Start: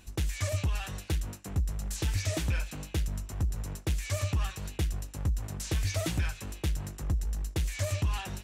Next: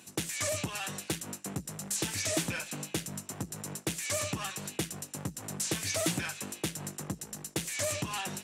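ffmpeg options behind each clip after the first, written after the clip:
ffmpeg -i in.wav -af "highpass=frequency=150:width=0.5412,highpass=frequency=150:width=1.3066,equalizer=frequency=9000:width=1.1:gain=6.5,volume=2.5dB" out.wav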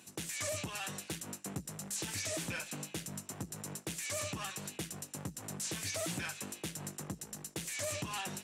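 ffmpeg -i in.wav -af "alimiter=level_in=0.5dB:limit=-24dB:level=0:latency=1:release=35,volume=-0.5dB,volume=-3.5dB" out.wav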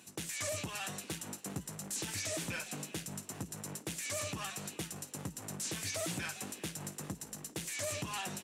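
ffmpeg -i in.wav -filter_complex "[0:a]asplit=4[link_01][link_02][link_03][link_04];[link_02]adelay=398,afreqshift=110,volume=-17dB[link_05];[link_03]adelay=796,afreqshift=220,volume=-24.7dB[link_06];[link_04]adelay=1194,afreqshift=330,volume=-32.5dB[link_07];[link_01][link_05][link_06][link_07]amix=inputs=4:normalize=0" out.wav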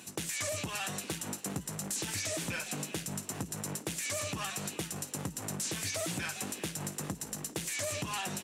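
ffmpeg -i in.wav -af "acompressor=threshold=-42dB:ratio=2.5,volume=7.5dB" out.wav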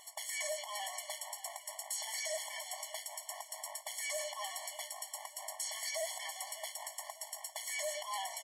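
ffmpeg -i in.wav -af "aecho=1:1:598|1196|1794|2392:0.178|0.0818|0.0376|0.0173,afftfilt=real='re*eq(mod(floor(b*sr/1024/580),2),1)':imag='im*eq(mod(floor(b*sr/1024/580),2),1)':win_size=1024:overlap=0.75" out.wav

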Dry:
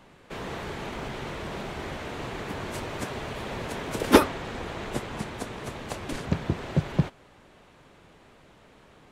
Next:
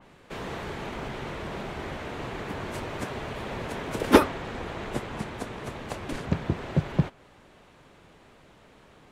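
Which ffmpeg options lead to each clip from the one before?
ffmpeg -i in.wav -af "adynamicequalizer=threshold=0.00355:dfrequency=3300:dqfactor=0.7:tfrequency=3300:tqfactor=0.7:attack=5:release=100:ratio=0.375:range=2:mode=cutabove:tftype=highshelf" out.wav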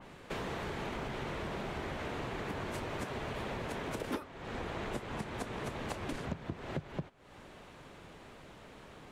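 ffmpeg -i in.wav -af "acompressor=threshold=-37dB:ratio=12,volume=2dB" out.wav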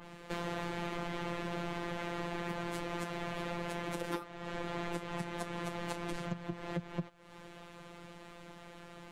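ffmpeg -i in.wav -filter_complex "[0:a]asplit=2[link_01][link_02];[link_02]asoftclip=type=tanh:threshold=-37.5dB,volume=-8.5dB[link_03];[link_01][link_03]amix=inputs=2:normalize=0,afftfilt=real='hypot(re,im)*cos(PI*b)':imag='0':win_size=1024:overlap=0.75,volume=2dB" out.wav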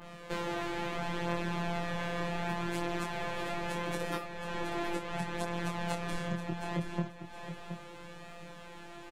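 ffmpeg -i in.wav -af "flanger=delay=19:depth=6:speed=0.24,aecho=1:1:721|1442|2163:0.376|0.0902|0.0216,volume=6dB" out.wav

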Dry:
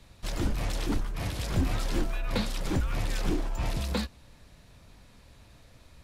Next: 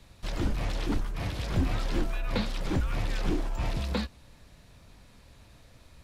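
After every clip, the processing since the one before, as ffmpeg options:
ffmpeg -i in.wav -filter_complex "[0:a]acrossover=split=5200[link_01][link_02];[link_02]acompressor=threshold=-53dB:ratio=4:attack=1:release=60[link_03];[link_01][link_03]amix=inputs=2:normalize=0" out.wav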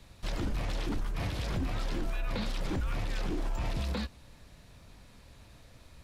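ffmpeg -i in.wav -af "alimiter=level_in=1dB:limit=-24dB:level=0:latency=1:release=33,volume=-1dB" out.wav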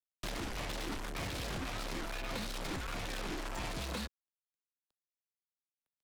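ffmpeg -i in.wav -filter_complex "[0:a]aeval=exprs='0.0596*(cos(1*acos(clip(val(0)/0.0596,-1,1)))-cos(1*PI/2))+0.00188*(cos(5*acos(clip(val(0)/0.0596,-1,1)))-cos(5*PI/2))':channel_layout=same,acrusher=bits=5:mix=0:aa=0.5,acrossover=split=180|360|830[link_01][link_02][link_03][link_04];[link_01]acompressor=threshold=-46dB:ratio=4[link_05];[link_02]acompressor=threshold=-49dB:ratio=4[link_06];[link_03]acompressor=threshold=-50dB:ratio=4[link_07];[link_04]acompressor=threshold=-42dB:ratio=4[link_08];[link_05][link_06][link_07][link_08]amix=inputs=4:normalize=0,volume=2dB" out.wav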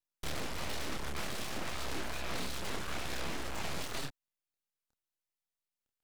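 ffmpeg -i in.wav -af "flanger=delay=22.5:depth=6.9:speed=2.3,aeval=exprs='abs(val(0))':channel_layout=same,volume=6dB" out.wav

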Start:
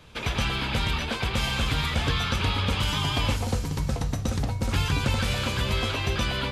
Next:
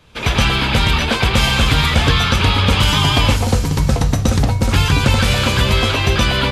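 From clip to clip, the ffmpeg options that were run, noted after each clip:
ffmpeg -i in.wav -af "dynaudnorm=framelen=130:gausssize=3:maxgain=14.5dB" out.wav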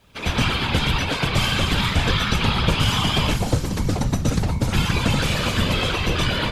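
ffmpeg -i in.wav -af "afftfilt=real='hypot(re,im)*cos(2*PI*random(0))':imag='hypot(re,im)*sin(2*PI*random(1))':win_size=512:overlap=0.75,acrusher=bits=10:mix=0:aa=0.000001" out.wav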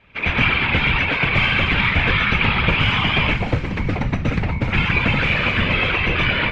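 ffmpeg -i in.wav -af "lowpass=frequency=2300:width_type=q:width=3.7" out.wav

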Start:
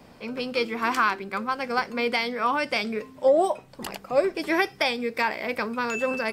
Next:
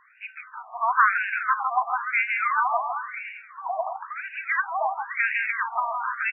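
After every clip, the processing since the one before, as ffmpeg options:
ffmpeg -i in.wav -af "aecho=1:1:160|296|411.6|509.9|593.4:0.631|0.398|0.251|0.158|0.1,afftfilt=real='re*between(b*sr/1024,860*pow(2100/860,0.5+0.5*sin(2*PI*0.98*pts/sr))/1.41,860*pow(2100/860,0.5+0.5*sin(2*PI*0.98*pts/sr))*1.41)':imag='im*between(b*sr/1024,860*pow(2100/860,0.5+0.5*sin(2*PI*0.98*pts/sr))/1.41,860*pow(2100/860,0.5+0.5*sin(2*PI*0.98*pts/sr))*1.41)':win_size=1024:overlap=0.75,volume=4.5dB" out.wav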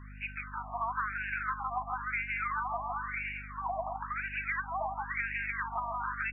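ffmpeg -i in.wav -af "acompressor=threshold=-32dB:ratio=6,aeval=exprs='val(0)+0.00501*(sin(2*PI*50*n/s)+sin(2*PI*2*50*n/s)/2+sin(2*PI*3*50*n/s)/3+sin(2*PI*4*50*n/s)/4+sin(2*PI*5*50*n/s)/5)':channel_layout=same" out.wav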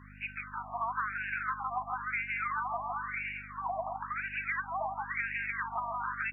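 ffmpeg -i in.wav -af "highpass=frequency=110:poles=1" out.wav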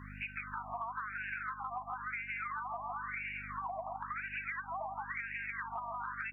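ffmpeg -i in.wav -af "acompressor=threshold=-42dB:ratio=5,volume=4dB" out.wav

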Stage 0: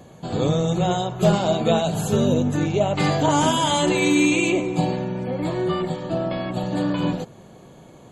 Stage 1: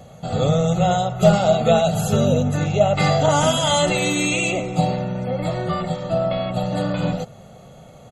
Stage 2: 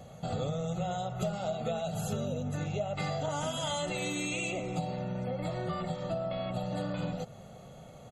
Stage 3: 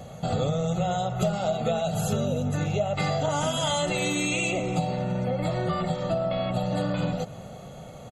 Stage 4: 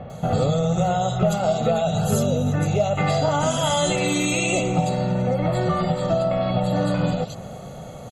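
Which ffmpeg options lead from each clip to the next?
ffmpeg -i in.wav -af "aecho=1:1:1.5:0.72,volume=1dB" out.wav
ffmpeg -i in.wav -af "acompressor=threshold=-25dB:ratio=6,volume=-6dB" out.wav
ffmpeg -i in.wav -af "aecho=1:1:330|660|990:0.0794|0.0302|0.0115,volume=7.5dB" out.wav
ffmpeg -i in.wav -filter_complex "[0:a]acrossover=split=2800[link_01][link_02];[link_02]adelay=100[link_03];[link_01][link_03]amix=inputs=2:normalize=0,volume=5.5dB" out.wav

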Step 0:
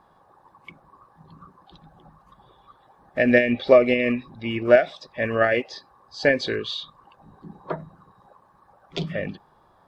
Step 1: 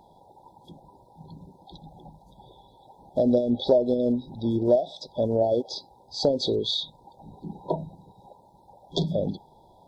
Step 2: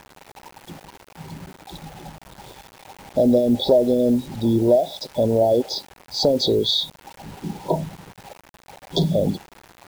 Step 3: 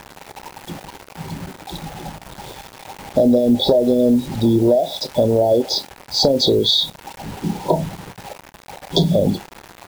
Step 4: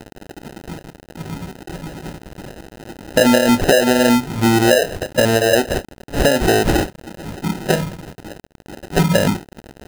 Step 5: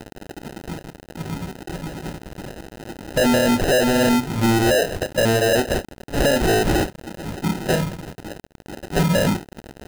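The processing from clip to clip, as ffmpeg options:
ffmpeg -i in.wav -af "afftfilt=real='re*(1-between(b*sr/4096,1000,3300))':imag='im*(1-between(b*sr/4096,1000,3300))':win_size=4096:overlap=0.75,acompressor=threshold=-26dB:ratio=2.5,volume=4.5dB" out.wav
ffmpeg -i in.wav -filter_complex "[0:a]asplit=2[link_01][link_02];[link_02]alimiter=limit=-20dB:level=0:latency=1:release=12,volume=3dB[link_03];[link_01][link_03]amix=inputs=2:normalize=0,acrusher=bits=6:mix=0:aa=0.000001" out.wav
ffmpeg -i in.wav -filter_complex "[0:a]acompressor=threshold=-19dB:ratio=4,asplit=2[link_01][link_02];[link_02]adelay=29,volume=-14dB[link_03];[link_01][link_03]amix=inputs=2:normalize=0,volume=7dB" out.wav
ffmpeg -i in.wav -af "acompressor=mode=upward:threshold=-35dB:ratio=2.5,acrusher=samples=39:mix=1:aa=0.000001,volume=1dB" out.wav
ffmpeg -i in.wav -af "asoftclip=type=hard:threshold=-14.5dB" out.wav

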